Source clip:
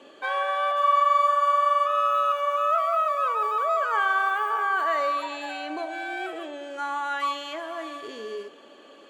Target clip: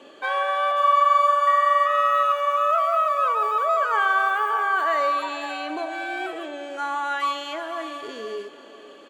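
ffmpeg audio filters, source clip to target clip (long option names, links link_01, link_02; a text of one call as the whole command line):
ffmpeg -i in.wav -filter_complex "[0:a]asettb=1/sr,asplit=3[link_01][link_02][link_03];[link_01]atrim=end=1.474[link_04];[link_02]atrim=start=1.47:end=2.23,asetpts=PTS-STARTPTS,afade=type=in:duration=0.004:curve=qsin,afade=type=out:start_time=0.756:duration=0.004:curve=qsin,aeval=exprs='val(0)+0.0224*sin(2*PI*1900*n/s)':channel_layout=same[link_05];[link_03]atrim=start=2.226[link_06];[link_04][link_05]acrossfade=duration=0.004:curve1=hsin:curve2=qsin[link_07];[link_07][link_06]acrossfade=duration=0.004:curve1=qsin:curve2=hsin,aecho=1:1:496|992|1488:0.158|0.0571|0.0205,volume=2.5dB" out.wav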